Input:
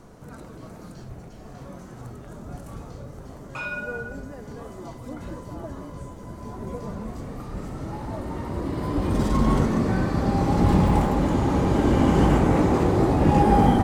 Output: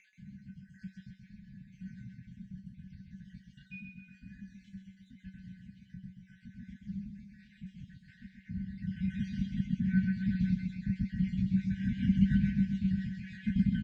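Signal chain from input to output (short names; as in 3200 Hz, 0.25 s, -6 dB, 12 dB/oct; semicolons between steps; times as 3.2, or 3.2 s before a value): random spectral dropouts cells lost 61%; HPF 110 Hz 6 dB/oct; low shelf 320 Hz +3.5 dB; upward compressor, threshold -35 dBFS; rotary speaker horn 0.85 Hz, later 7 Hz, at 11.13; brick-wall FIR band-stop 250–1500 Hz; air absorption 210 m; resonator 190 Hz, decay 0.19 s, harmonics all, mix 90%; feedback echo 0.13 s, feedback 56%, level -6 dB; gain +4.5 dB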